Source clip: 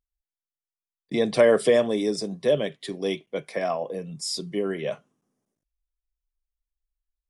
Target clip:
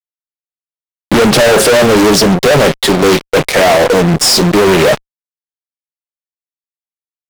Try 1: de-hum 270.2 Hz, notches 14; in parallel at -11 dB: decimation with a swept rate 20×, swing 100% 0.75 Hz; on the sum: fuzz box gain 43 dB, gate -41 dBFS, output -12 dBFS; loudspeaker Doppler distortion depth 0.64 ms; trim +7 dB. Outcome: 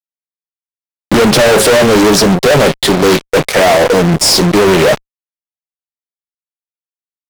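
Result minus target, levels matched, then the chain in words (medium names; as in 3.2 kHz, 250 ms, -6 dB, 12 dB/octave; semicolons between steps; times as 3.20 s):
decimation with a swept rate: distortion +10 dB
de-hum 270.2 Hz, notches 14; in parallel at -11 dB: decimation with a swept rate 7×, swing 100% 0.75 Hz; on the sum: fuzz box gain 43 dB, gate -41 dBFS, output -12 dBFS; loudspeaker Doppler distortion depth 0.64 ms; trim +7 dB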